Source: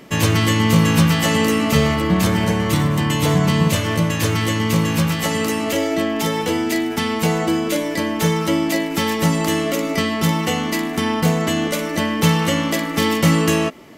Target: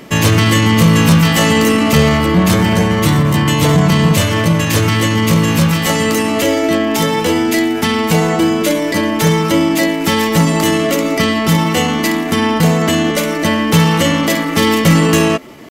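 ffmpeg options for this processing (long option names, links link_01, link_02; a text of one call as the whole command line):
ffmpeg -i in.wav -af "atempo=0.89,acontrast=75" out.wav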